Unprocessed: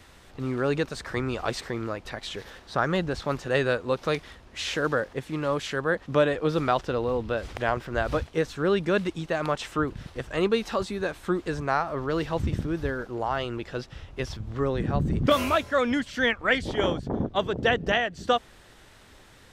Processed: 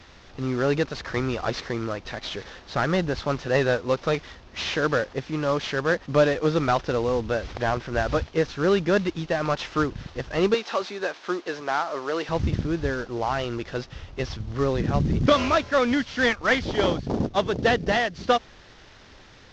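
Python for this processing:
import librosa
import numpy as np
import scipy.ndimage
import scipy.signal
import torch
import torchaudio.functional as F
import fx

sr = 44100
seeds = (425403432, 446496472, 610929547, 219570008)

y = fx.cvsd(x, sr, bps=32000)
y = fx.highpass(y, sr, hz=400.0, slope=12, at=(10.54, 12.29))
y = y * librosa.db_to_amplitude(3.0)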